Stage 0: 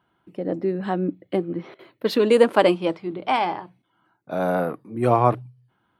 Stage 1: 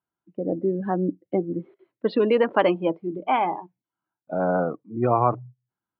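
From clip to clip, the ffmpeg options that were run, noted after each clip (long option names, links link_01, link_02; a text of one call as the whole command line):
ffmpeg -i in.wav -filter_complex "[0:a]afftdn=noise_reduction=22:noise_floor=-30,lowpass=2700,acrossover=split=840[link_01][link_02];[link_01]alimiter=limit=-12.5dB:level=0:latency=1:release=167[link_03];[link_03][link_02]amix=inputs=2:normalize=0" out.wav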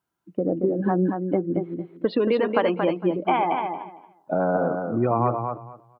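ffmpeg -i in.wav -af "acompressor=threshold=-29dB:ratio=3,aecho=1:1:228|456|684:0.531|0.101|0.0192,volume=7.5dB" out.wav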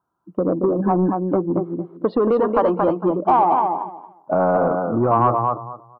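ffmpeg -i in.wav -af "asoftclip=type=tanh:threshold=-15.5dB,highshelf=frequency=1600:width_type=q:width=3:gain=-11,acontrast=20" out.wav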